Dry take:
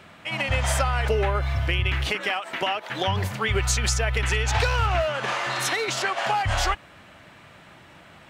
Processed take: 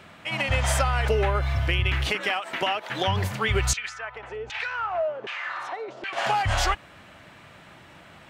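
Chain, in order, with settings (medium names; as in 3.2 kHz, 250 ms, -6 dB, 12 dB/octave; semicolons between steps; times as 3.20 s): 3.73–6.13 s: LFO band-pass saw down 1.3 Hz 340–2900 Hz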